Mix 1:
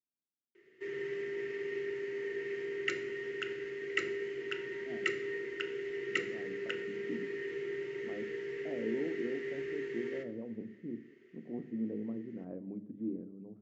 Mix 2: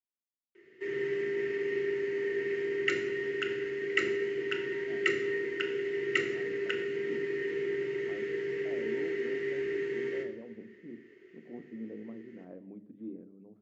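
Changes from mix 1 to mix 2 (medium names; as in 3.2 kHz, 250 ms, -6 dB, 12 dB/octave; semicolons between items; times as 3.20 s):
speech: add tilt EQ +2.5 dB/octave; background: send +8.5 dB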